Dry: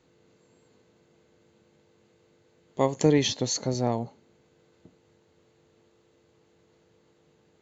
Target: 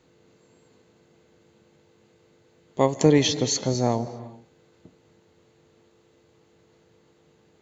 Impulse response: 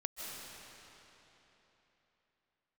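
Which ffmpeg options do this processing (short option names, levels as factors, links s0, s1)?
-filter_complex "[0:a]asplit=2[s0][s1];[1:a]atrim=start_sample=2205,afade=t=out:st=0.45:d=0.01,atrim=end_sample=20286[s2];[s1][s2]afir=irnorm=-1:irlink=0,volume=0.355[s3];[s0][s3]amix=inputs=2:normalize=0,volume=1.19"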